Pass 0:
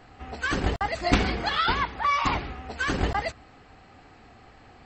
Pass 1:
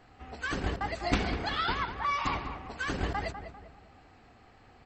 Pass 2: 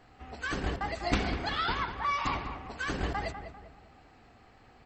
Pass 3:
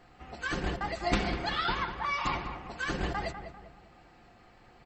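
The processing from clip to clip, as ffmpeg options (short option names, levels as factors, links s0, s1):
-filter_complex "[0:a]asplit=2[s0][s1];[s1]adelay=198,lowpass=f=1600:p=1,volume=0.398,asplit=2[s2][s3];[s3]adelay=198,lowpass=f=1600:p=1,volume=0.44,asplit=2[s4][s5];[s5]adelay=198,lowpass=f=1600:p=1,volume=0.44,asplit=2[s6][s7];[s7]adelay=198,lowpass=f=1600:p=1,volume=0.44,asplit=2[s8][s9];[s9]adelay=198,lowpass=f=1600:p=1,volume=0.44[s10];[s0][s2][s4][s6][s8][s10]amix=inputs=6:normalize=0,volume=0.473"
-af "bandreject=f=90.1:t=h:w=4,bandreject=f=180.2:t=h:w=4,bandreject=f=270.3:t=h:w=4,bandreject=f=360.4:t=h:w=4,bandreject=f=450.5:t=h:w=4,bandreject=f=540.6:t=h:w=4,bandreject=f=630.7:t=h:w=4,bandreject=f=720.8:t=h:w=4,bandreject=f=810.9:t=h:w=4,bandreject=f=901:t=h:w=4,bandreject=f=991.1:t=h:w=4,bandreject=f=1081.2:t=h:w=4,bandreject=f=1171.3:t=h:w=4,bandreject=f=1261.4:t=h:w=4,bandreject=f=1351.5:t=h:w=4,bandreject=f=1441.6:t=h:w=4,bandreject=f=1531.7:t=h:w=4,bandreject=f=1621.8:t=h:w=4,bandreject=f=1711.9:t=h:w=4,bandreject=f=1802:t=h:w=4,bandreject=f=1892.1:t=h:w=4,bandreject=f=1982.2:t=h:w=4,bandreject=f=2072.3:t=h:w=4,bandreject=f=2162.4:t=h:w=4,bandreject=f=2252.5:t=h:w=4,bandreject=f=2342.6:t=h:w=4,bandreject=f=2432.7:t=h:w=4,bandreject=f=2522.8:t=h:w=4,bandreject=f=2612.9:t=h:w=4,bandreject=f=2703:t=h:w=4,bandreject=f=2793.1:t=h:w=4,bandreject=f=2883.2:t=h:w=4,bandreject=f=2973.3:t=h:w=4,bandreject=f=3063.4:t=h:w=4,bandreject=f=3153.5:t=h:w=4,bandreject=f=3243.6:t=h:w=4,bandreject=f=3333.7:t=h:w=4,bandreject=f=3423.8:t=h:w=4,bandreject=f=3513.9:t=h:w=4,bandreject=f=3604:t=h:w=4"
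-af "aecho=1:1:5.7:0.39"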